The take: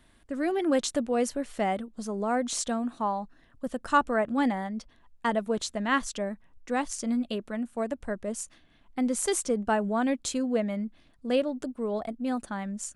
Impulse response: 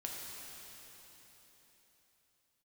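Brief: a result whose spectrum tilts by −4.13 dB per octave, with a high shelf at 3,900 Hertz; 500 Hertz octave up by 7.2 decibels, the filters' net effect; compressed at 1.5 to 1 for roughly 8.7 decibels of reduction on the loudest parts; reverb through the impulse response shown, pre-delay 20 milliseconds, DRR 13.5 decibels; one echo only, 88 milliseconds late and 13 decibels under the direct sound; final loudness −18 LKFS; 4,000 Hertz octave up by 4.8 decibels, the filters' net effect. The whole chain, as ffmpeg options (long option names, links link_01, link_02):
-filter_complex "[0:a]equalizer=frequency=500:width_type=o:gain=8.5,highshelf=frequency=3900:gain=-5,equalizer=frequency=4000:width_type=o:gain=9,acompressor=threshold=-39dB:ratio=1.5,aecho=1:1:88:0.224,asplit=2[link_01][link_02];[1:a]atrim=start_sample=2205,adelay=20[link_03];[link_02][link_03]afir=irnorm=-1:irlink=0,volume=-13.5dB[link_04];[link_01][link_04]amix=inputs=2:normalize=0,volume=14dB"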